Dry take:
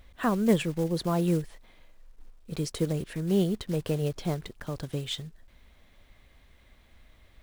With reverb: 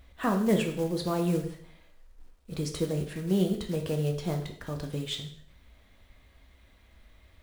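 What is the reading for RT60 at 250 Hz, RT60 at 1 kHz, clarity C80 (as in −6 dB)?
0.60 s, 0.60 s, 12.0 dB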